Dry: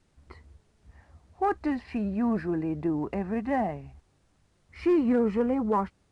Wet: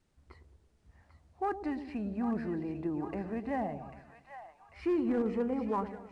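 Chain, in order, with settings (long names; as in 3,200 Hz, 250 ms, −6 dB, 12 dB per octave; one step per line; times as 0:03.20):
echo with a time of its own for lows and highs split 730 Hz, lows 110 ms, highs 794 ms, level −9 dB
hard clipping −17 dBFS, distortion −29 dB
level −7 dB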